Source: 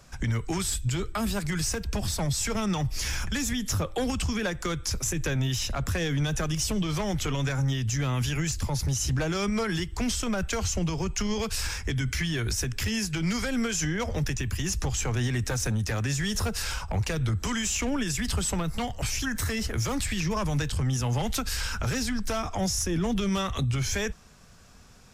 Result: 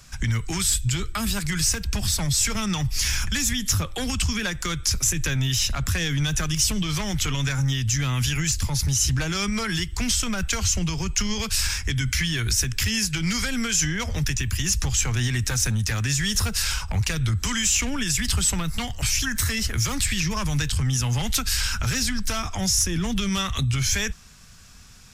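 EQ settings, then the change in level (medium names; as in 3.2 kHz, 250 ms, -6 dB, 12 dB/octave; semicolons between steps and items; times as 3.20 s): bass shelf 390 Hz -3 dB; peaking EQ 540 Hz -12.5 dB 2.3 oct; +8.5 dB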